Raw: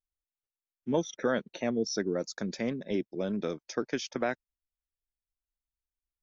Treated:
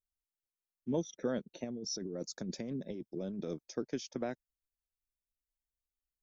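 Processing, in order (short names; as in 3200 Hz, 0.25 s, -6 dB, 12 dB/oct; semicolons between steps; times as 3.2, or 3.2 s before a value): bell 1700 Hz -12 dB 2.8 oct; 1.64–3.66 negative-ratio compressor -37 dBFS, ratio -1; gain -2 dB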